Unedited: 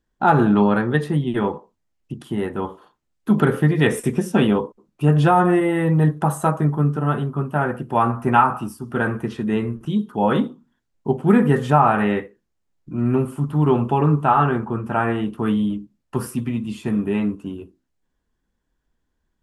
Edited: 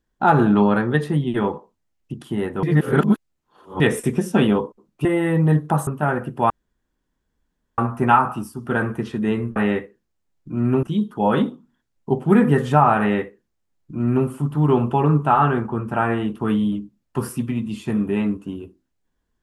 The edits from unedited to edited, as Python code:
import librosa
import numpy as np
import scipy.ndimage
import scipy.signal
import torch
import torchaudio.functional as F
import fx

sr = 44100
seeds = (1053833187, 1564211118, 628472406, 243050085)

y = fx.edit(x, sr, fx.reverse_span(start_s=2.63, length_s=1.17),
    fx.cut(start_s=5.05, length_s=0.52),
    fx.cut(start_s=6.39, length_s=1.01),
    fx.insert_room_tone(at_s=8.03, length_s=1.28),
    fx.duplicate(start_s=11.97, length_s=1.27, to_s=9.81), tone=tone)